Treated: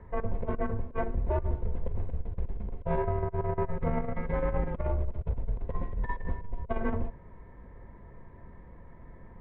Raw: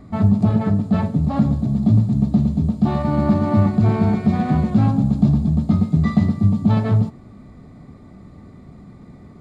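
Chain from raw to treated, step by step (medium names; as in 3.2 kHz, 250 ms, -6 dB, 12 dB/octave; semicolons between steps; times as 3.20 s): mistuned SSB -200 Hz 190–2600 Hz; compressor with a negative ratio -23 dBFS, ratio -0.5; trim -5 dB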